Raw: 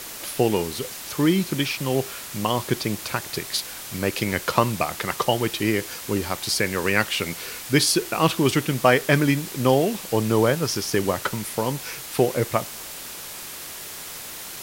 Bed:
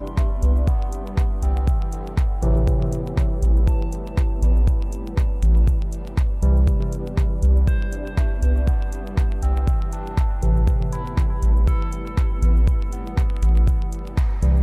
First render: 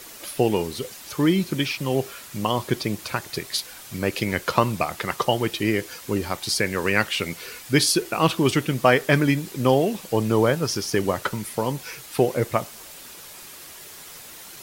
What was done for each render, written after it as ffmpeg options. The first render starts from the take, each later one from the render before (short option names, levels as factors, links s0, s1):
-af "afftdn=nr=7:nf=-37"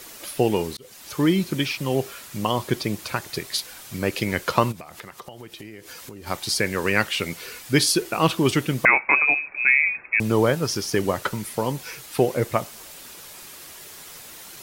-filter_complex "[0:a]asplit=3[s0][s1][s2];[s0]afade=t=out:st=4.71:d=0.02[s3];[s1]acompressor=threshold=0.0178:ratio=16:attack=3.2:release=140:knee=1:detection=peak,afade=t=in:st=4.71:d=0.02,afade=t=out:st=6.26:d=0.02[s4];[s2]afade=t=in:st=6.26:d=0.02[s5];[s3][s4][s5]amix=inputs=3:normalize=0,asettb=1/sr,asplit=3[s6][s7][s8];[s6]atrim=end=8.854[s9];[s7]atrim=start=8.85:end=10.2,asetpts=PTS-STARTPTS,afade=t=in:d=0.004:c=qsin,afade=t=out:st=1.346:d=0.004:c=qsin,lowpass=f=2300:t=q:w=0.5098,lowpass=f=2300:t=q:w=0.6013,lowpass=f=2300:t=q:w=0.9,lowpass=f=2300:t=q:w=2.563,afreqshift=-2700[s10];[s8]atrim=start=10.196[s11];[s9][s10]acrossfade=d=0.004:c1=hsin:c2=qsin[s12];[s12][s11]acrossfade=d=0.004:c1=qsin:c2=hsin,asplit=2[s13][s14];[s13]atrim=end=0.77,asetpts=PTS-STARTPTS,afade=t=out:st=0.766:d=0.004:c=hsin[s15];[s14]atrim=start=0.77,asetpts=PTS-STARTPTS,afade=t=in:d=0.45:c=qsin[s16];[s15][s16]concat=n=2:v=0:a=1"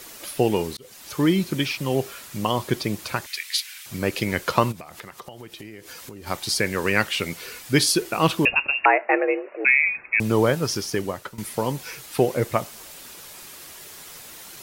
-filter_complex "[0:a]asettb=1/sr,asplit=3[s0][s1][s2];[s0]atrim=end=3.264[s3];[s1]atrim=start=3.26:end=3.86,asetpts=PTS-STARTPTS,afade=t=in:d=0.004:c=qsin,afade=t=out:st=0.596:d=0.004:c=qsin,highpass=f=2200:t=q:w=2.1[s4];[s2]atrim=start=3.856[s5];[s3][s4]acrossfade=d=0.004:c1=hsin:c2=qsin[s6];[s6][s5]acrossfade=d=0.004:c1=qsin:c2=hsin,asettb=1/sr,asplit=3[s7][s8][s9];[s7]atrim=end=8.454[s10];[s8]atrim=start=8.45:end=9.65,asetpts=PTS-STARTPTS,afade=t=in:d=0.004:c=qsin,afade=t=out:st=1.196:d=0.004:c=qsin,lowpass=f=2500:t=q:w=0.5098,lowpass=f=2500:t=q:w=0.6013,lowpass=f=2500:t=q:w=0.9,lowpass=f=2500:t=q:w=2.563,afreqshift=-2900[s11];[s9]atrim=start=9.646[s12];[s10][s11]acrossfade=d=0.004:c1=hsin:c2=qsin[s13];[s13][s12]acrossfade=d=0.004:c1=qsin:c2=hsin,asplit=2[s14][s15];[s14]atrim=end=11.38,asetpts=PTS-STARTPTS,afade=t=out:st=10.74:d=0.64:silence=0.16788[s16];[s15]atrim=start=11.38,asetpts=PTS-STARTPTS,afade=t=in:d=0.004:c=hsin:silence=0.16788[s17];[s16][s17]concat=n=2:v=0:a=1"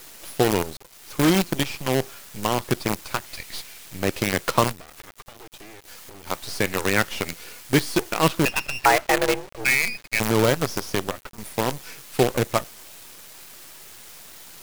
-filter_complex "[0:a]acrossover=split=560|2200[s0][s1][s2];[s2]volume=23.7,asoftclip=hard,volume=0.0422[s3];[s0][s1][s3]amix=inputs=3:normalize=0,acrusher=bits=4:dc=4:mix=0:aa=0.000001"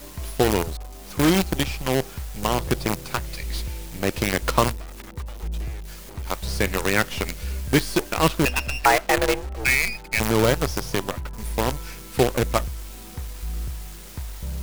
-filter_complex "[1:a]volume=0.2[s0];[0:a][s0]amix=inputs=2:normalize=0"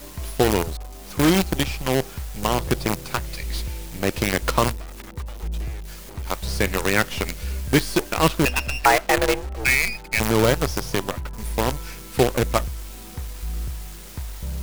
-af "volume=1.12,alimiter=limit=0.708:level=0:latency=1"